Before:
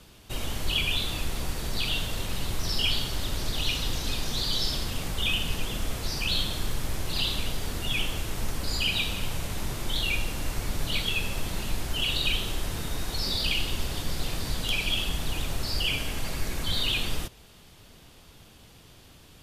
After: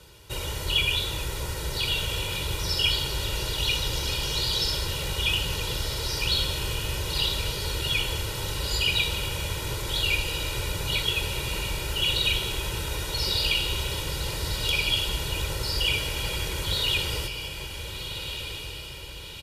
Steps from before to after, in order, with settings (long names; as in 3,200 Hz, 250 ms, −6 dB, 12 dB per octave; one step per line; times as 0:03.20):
high-pass filter 48 Hz
comb filter 2.1 ms, depth 79%
feedback delay with all-pass diffusion 1,444 ms, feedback 49%, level −7.5 dB